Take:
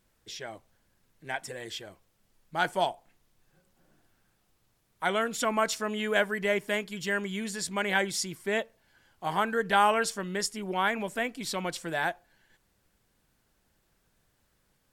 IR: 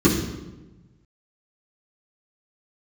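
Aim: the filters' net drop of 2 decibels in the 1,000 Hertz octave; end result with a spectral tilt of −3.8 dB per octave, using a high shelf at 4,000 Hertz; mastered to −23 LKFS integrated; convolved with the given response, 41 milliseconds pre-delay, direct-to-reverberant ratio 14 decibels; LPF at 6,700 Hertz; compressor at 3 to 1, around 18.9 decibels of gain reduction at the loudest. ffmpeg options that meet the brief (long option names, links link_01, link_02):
-filter_complex "[0:a]lowpass=6700,equalizer=frequency=1000:width_type=o:gain=-3,highshelf=frequency=4000:gain=4,acompressor=threshold=-48dB:ratio=3,asplit=2[link_01][link_02];[1:a]atrim=start_sample=2205,adelay=41[link_03];[link_02][link_03]afir=irnorm=-1:irlink=0,volume=-33dB[link_04];[link_01][link_04]amix=inputs=2:normalize=0,volume=22dB"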